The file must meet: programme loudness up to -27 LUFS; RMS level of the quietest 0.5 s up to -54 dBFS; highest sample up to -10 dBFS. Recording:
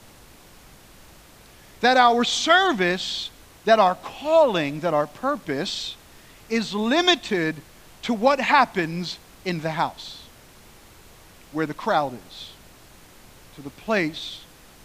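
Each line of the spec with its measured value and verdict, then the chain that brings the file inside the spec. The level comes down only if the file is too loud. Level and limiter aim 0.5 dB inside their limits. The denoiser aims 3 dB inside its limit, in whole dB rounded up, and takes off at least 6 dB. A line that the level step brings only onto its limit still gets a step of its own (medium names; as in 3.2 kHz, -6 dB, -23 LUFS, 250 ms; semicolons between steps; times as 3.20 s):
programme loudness -22.0 LUFS: fail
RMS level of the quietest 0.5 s -49 dBFS: fail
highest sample -4.0 dBFS: fail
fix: trim -5.5 dB; peak limiter -10.5 dBFS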